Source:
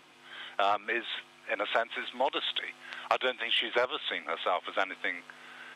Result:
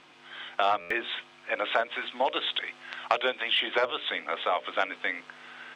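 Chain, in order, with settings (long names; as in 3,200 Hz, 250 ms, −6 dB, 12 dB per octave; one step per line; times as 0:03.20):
low-pass filter 6,400 Hz 12 dB per octave
mains-hum notches 60/120/180/240/300/360/420/480/540/600 Hz
buffer that repeats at 0:00.80, samples 512, times 8
level +2.5 dB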